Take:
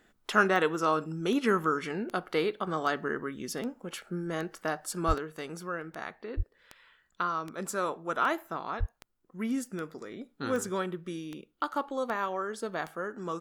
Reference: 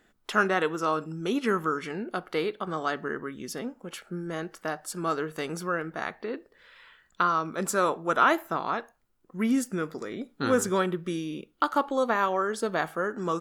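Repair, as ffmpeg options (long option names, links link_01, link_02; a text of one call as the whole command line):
ffmpeg -i in.wav -filter_complex "[0:a]adeclick=threshold=4,asplit=3[link_01][link_02][link_03];[link_01]afade=type=out:start_time=5.07:duration=0.02[link_04];[link_02]highpass=frequency=140:width=0.5412,highpass=frequency=140:width=1.3066,afade=type=in:start_time=5.07:duration=0.02,afade=type=out:start_time=5.19:duration=0.02[link_05];[link_03]afade=type=in:start_time=5.19:duration=0.02[link_06];[link_04][link_05][link_06]amix=inputs=3:normalize=0,asplit=3[link_07][link_08][link_09];[link_07]afade=type=out:start_time=6.36:duration=0.02[link_10];[link_08]highpass=frequency=140:width=0.5412,highpass=frequency=140:width=1.3066,afade=type=in:start_time=6.36:duration=0.02,afade=type=out:start_time=6.48:duration=0.02[link_11];[link_09]afade=type=in:start_time=6.48:duration=0.02[link_12];[link_10][link_11][link_12]amix=inputs=3:normalize=0,asplit=3[link_13][link_14][link_15];[link_13]afade=type=out:start_time=8.79:duration=0.02[link_16];[link_14]highpass=frequency=140:width=0.5412,highpass=frequency=140:width=1.3066,afade=type=in:start_time=8.79:duration=0.02,afade=type=out:start_time=8.91:duration=0.02[link_17];[link_15]afade=type=in:start_time=8.91:duration=0.02[link_18];[link_16][link_17][link_18]amix=inputs=3:normalize=0,asetnsamples=nb_out_samples=441:pad=0,asendcmd='5.18 volume volume 6.5dB',volume=0dB" out.wav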